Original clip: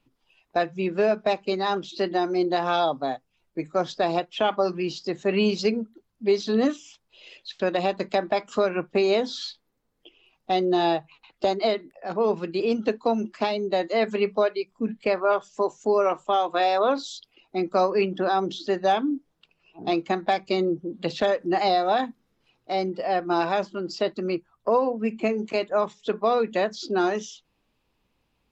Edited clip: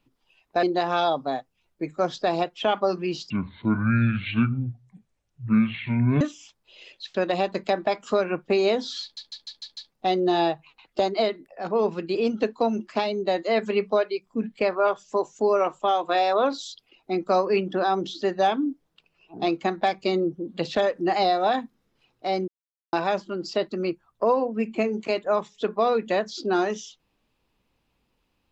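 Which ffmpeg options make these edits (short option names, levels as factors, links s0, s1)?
-filter_complex "[0:a]asplit=12[s0][s1][s2][s3][s4][s5][s6][s7][s8][s9][s10][s11];[s0]atrim=end=0.632[s12];[s1]atrim=start=2.388:end=5.064[s13];[s2]atrim=start=5.06:end=6.66,asetpts=PTS-STARTPTS,asetrate=24255,aresample=44100[s14];[s3]atrim=start=6.656:end=9.622[s15];[s4]atrim=start=9.468:end=9.622[s16];[s5]atrim=start=9.468:end=9.622[s17];[s6]atrim=start=9.468:end=9.622[s18];[s7]atrim=start=9.468:end=9.622[s19];[s8]atrim=start=9.468:end=9.622[s20];[s9]atrim=start=10.368:end=22.93,asetpts=PTS-STARTPTS,afade=t=out:st=12.558:d=0.004:c=hsin[s21];[s10]atrim=start=22.93:end=23.38,asetpts=PTS-STARTPTS,volume=0[s22];[s11]atrim=start=23.38,asetpts=PTS-STARTPTS,afade=t=in:d=0.004:c=hsin[s23];[s12][s13]acrossfade=d=0.004:c1=hsin:c2=hsin[s24];[s24][s14]acrossfade=d=0.004:c1=hsin:c2=hsin[s25];[s25][s15]acrossfade=d=0.004:c1=hsin:c2=hsin[s26];[s26][s16]acrossfade=d=0.004:c1=hsin:c2=hsin[s27];[s27][s17]acrossfade=d=0.004:c1=hsin:c2=hsin[s28];[s28][s18]acrossfade=d=0.004:c1=hsin:c2=hsin[s29];[s29][s19]acrossfade=d=0.004:c1=hsin:c2=hsin[s30];[s30][s20]acrossfade=d=0.004:c1=hsin:c2=hsin[s31];[s21][s22][s23]concat=n=3:v=0:a=1[s32];[s31][s32]acrossfade=d=0.004:c1=hsin:c2=hsin"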